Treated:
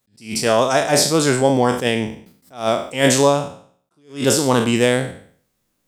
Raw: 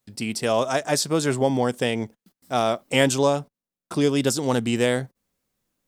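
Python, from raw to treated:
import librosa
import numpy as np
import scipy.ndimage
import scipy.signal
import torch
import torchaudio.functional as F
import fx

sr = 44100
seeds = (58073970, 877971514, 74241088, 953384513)

y = fx.spec_trails(x, sr, decay_s=0.53)
y = fx.attack_slew(y, sr, db_per_s=170.0)
y = F.gain(torch.from_numpy(y), 5.0).numpy()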